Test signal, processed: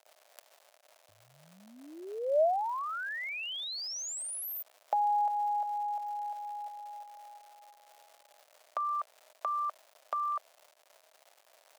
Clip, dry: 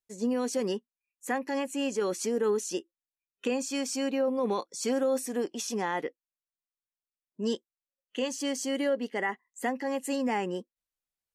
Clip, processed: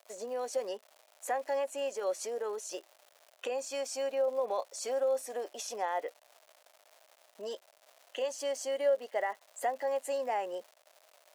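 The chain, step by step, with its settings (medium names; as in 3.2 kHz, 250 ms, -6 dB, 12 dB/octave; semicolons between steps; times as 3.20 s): compression 2:1, threshold -50 dBFS; crackle 310 per s -51 dBFS; resonant high-pass 620 Hz, resonance Q 5.7; trim +4.5 dB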